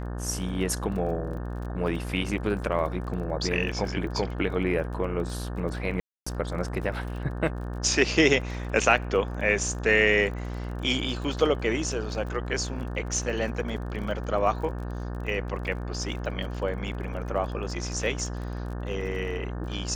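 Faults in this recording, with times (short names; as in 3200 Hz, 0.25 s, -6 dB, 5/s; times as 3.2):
buzz 60 Hz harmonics 30 -33 dBFS
crackle 28/s -36 dBFS
6–6.26 gap 0.265 s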